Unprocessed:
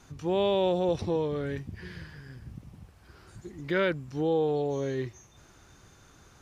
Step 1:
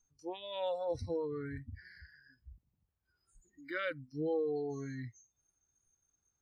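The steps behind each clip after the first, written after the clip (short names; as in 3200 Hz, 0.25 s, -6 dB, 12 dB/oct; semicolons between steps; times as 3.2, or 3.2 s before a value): low shelf 82 Hz +7 dB; spectral noise reduction 27 dB; gain -7 dB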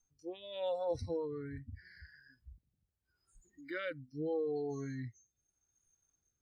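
rotary speaker horn 0.8 Hz; gain +1 dB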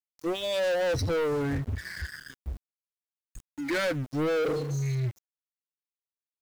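spectral repair 4.46–5.16, 220–2000 Hz both; sample leveller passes 5; sample gate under -47 dBFS; gain +1.5 dB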